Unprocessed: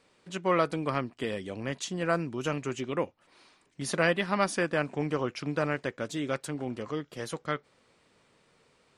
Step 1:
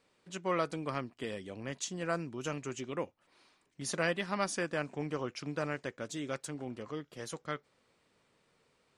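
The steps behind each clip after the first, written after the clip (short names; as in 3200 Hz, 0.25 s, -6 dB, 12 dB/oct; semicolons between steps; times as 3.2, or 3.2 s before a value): dynamic EQ 6700 Hz, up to +7 dB, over -54 dBFS, Q 1.3; gain -6.5 dB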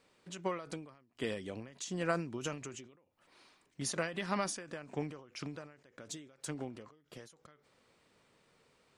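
ending taper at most 100 dB/s; gain +2.5 dB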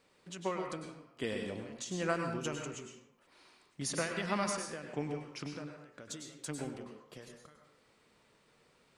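reverb RT60 0.60 s, pre-delay 94 ms, DRR 3 dB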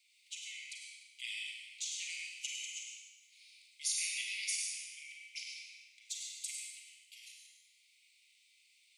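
Chebyshev high-pass 2100 Hz, order 8; Schroeder reverb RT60 1.1 s, combs from 33 ms, DRR 0.5 dB; gain +3 dB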